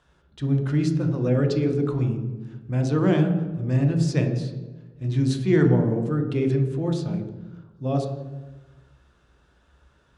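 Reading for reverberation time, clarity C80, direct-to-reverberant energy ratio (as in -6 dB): 1.3 s, 8.5 dB, 3.0 dB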